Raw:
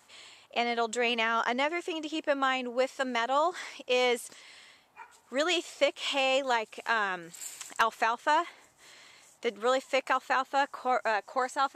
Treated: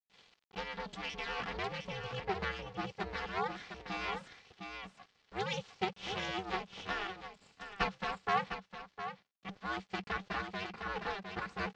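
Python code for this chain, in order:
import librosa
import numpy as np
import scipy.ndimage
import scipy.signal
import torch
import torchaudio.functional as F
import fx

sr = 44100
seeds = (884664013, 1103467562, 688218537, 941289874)

y = fx.lower_of_two(x, sr, delay_ms=3.2)
y = np.where(np.abs(y) >= 10.0 ** (-49.5 / 20.0), y, 0.0)
y = scipy.signal.sosfilt(scipy.signal.butter(4, 5200.0, 'lowpass', fs=sr, output='sos'), y)
y = y + 10.0 ** (-6.0 / 20.0) * np.pad(y, (int(708 * sr / 1000.0), 0))[:len(y)]
y = y * np.sin(2.0 * np.pi * 190.0 * np.arange(len(y)) / sr)
y = fx.band_widen(y, sr, depth_pct=70, at=(7.07, 9.49))
y = F.gain(torch.from_numpy(y), -4.5).numpy()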